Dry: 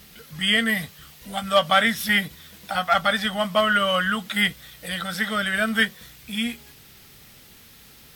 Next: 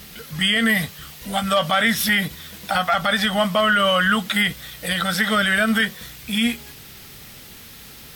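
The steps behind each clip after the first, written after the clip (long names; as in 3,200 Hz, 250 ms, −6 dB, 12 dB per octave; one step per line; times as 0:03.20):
boost into a limiter +16 dB
level −8.5 dB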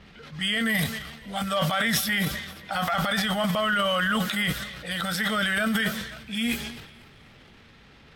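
low-pass that shuts in the quiet parts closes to 2,100 Hz, open at −19 dBFS
feedback echo with a high-pass in the loop 261 ms, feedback 52%, high-pass 150 Hz, level −20.5 dB
transient designer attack −2 dB, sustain +11 dB
level −7 dB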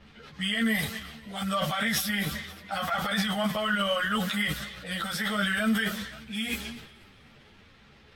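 string-ensemble chorus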